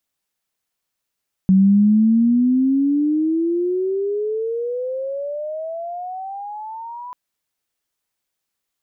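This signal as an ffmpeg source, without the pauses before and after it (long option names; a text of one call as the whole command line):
ffmpeg -f lavfi -i "aevalsrc='pow(10,(-9-21*t/5.64)/20)*sin(2*PI*187*5.64/(29*log(2)/12)*(exp(29*log(2)/12*t/5.64)-1))':duration=5.64:sample_rate=44100" out.wav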